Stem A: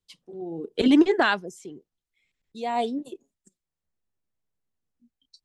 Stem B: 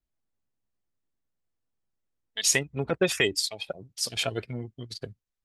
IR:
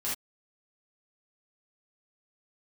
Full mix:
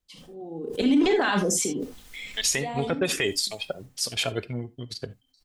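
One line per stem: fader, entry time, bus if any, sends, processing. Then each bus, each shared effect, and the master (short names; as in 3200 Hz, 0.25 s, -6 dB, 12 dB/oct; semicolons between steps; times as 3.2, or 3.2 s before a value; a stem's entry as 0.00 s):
2.5 s -4 dB -> 3.15 s -14 dB, 0.00 s, send -7 dB, comb 3.9 ms, depth 34%; sustainer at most 21 dB/s
+2.0 dB, 0.00 s, send -19 dB, dry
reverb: on, pre-delay 3 ms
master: limiter -13.5 dBFS, peak gain reduction 9 dB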